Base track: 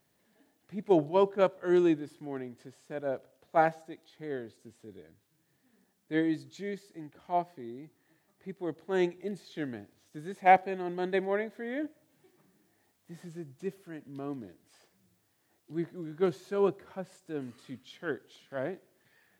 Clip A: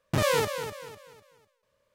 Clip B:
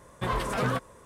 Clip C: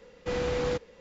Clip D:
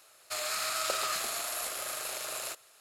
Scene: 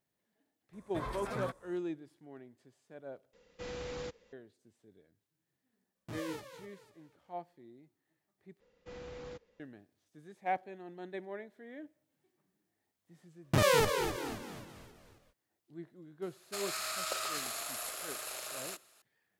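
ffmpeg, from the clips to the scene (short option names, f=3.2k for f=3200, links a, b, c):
-filter_complex "[3:a]asplit=2[a][b];[1:a]asplit=2[c][d];[0:a]volume=-13dB[e];[2:a]bandreject=f=2.9k:w=7.3[f];[a]highshelf=f=3k:g=7[g];[c]flanger=delay=15:depth=2.2:speed=2.5[h];[d]asplit=6[i][j][k][l][m][n];[j]adelay=267,afreqshift=-110,volume=-11dB[o];[k]adelay=534,afreqshift=-220,volume=-17.6dB[p];[l]adelay=801,afreqshift=-330,volume=-24.1dB[q];[m]adelay=1068,afreqshift=-440,volume=-30.7dB[r];[n]adelay=1335,afreqshift=-550,volume=-37.2dB[s];[i][o][p][q][r][s]amix=inputs=6:normalize=0[t];[e]asplit=3[u][v][w];[u]atrim=end=3.334[x];[g]atrim=end=1,asetpts=PTS-STARTPTS,volume=-13dB[y];[v]atrim=start=4.326:end=8.604[z];[b]atrim=end=1,asetpts=PTS-STARTPTS,volume=-17.5dB[aa];[w]atrim=start=9.596[ab];[f]atrim=end=1.05,asetpts=PTS-STARTPTS,volume=-11.5dB,afade=t=in:d=0.004:c=hsin,afade=t=out:st=1.046:d=0.004:c=hsin,adelay=730[ac];[h]atrim=end=1.94,asetpts=PTS-STARTPTS,volume=-16dB,afade=t=in:d=0.004:c=hsin,afade=t=out:st=1.936:d=0.004:c=hsin,adelay=5950[ad];[t]atrim=end=1.94,asetpts=PTS-STARTPTS,volume=-1.5dB,afade=t=in:d=0.05,afade=t=out:st=1.89:d=0.05,adelay=13400[ae];[4:a]atrim=end=2.8,asetpts=PTS-STARTPTS,volume=-5dB,afade=t=in:d=0.004:c=hsin,afade=t=out:st=2.796:d=0.004:c=hsin,adelay=16220[af];[x][y]acrossfade=d=0.004:c1=hsin:c2=hsin[ag];[ag][z]acrossfade=d=0.004:c1=hsin:c2=hsin[ah];[ah][aa]acrossfade=d=0.004:c1=hsin:c2=hsin[ai];[ai][ab]acrossfade=d=0.004:c1=hsin:c2=hsin[aj];[aj][ac][ad][ae][af]amix=inputs=5:normalize=0"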